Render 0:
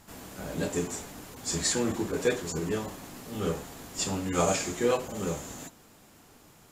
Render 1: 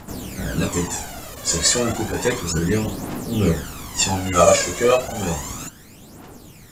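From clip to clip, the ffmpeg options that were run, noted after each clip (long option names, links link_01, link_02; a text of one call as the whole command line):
ffmpeg -i in.wav -af "aphaser=in_gain=1:out_gain=1:delay=1.9:decay=0.65:speed=0.32:type=triangular,volume=8.5dB" out.wav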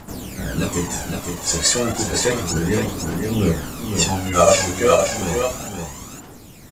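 ffmpeg -i in.wav -af "aecho=1:1:513:0.531" out.wav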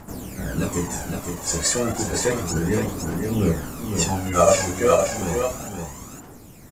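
ffmpeg -i in.wav -af "equalizer=frequency=3600:width=1.1:gain=-7,volume=-2dB" out.wav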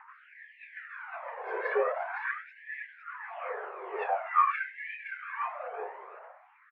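ffmpeg -i in.wav -af "highpass=frequency=190:width_type=q:width=0.5412,highpass=frequency=190:width_type=q:width=1.307,lowpass=frequency=2300:width_type=q:width=0.5176,lowpass=frequency=2300:width_type=q:width=0.7071,lowpass=frequency=2300:width_type=q:width=1.932,afreqshift=-75,aemphasis=mode=reproduction:type=50fm,afftfilt=real='re*gte(b*sr/1024,350*pow(1700/350,0.5+0.5*sin(2*PI*0.46*pts/sr)))':imag='im*gte(b*sr/1024,350*pow(1700/350,0.5+0.5*sin(2*PI*0.46*pts/sr)))':win_size=1024:overlap=0.75" out.wav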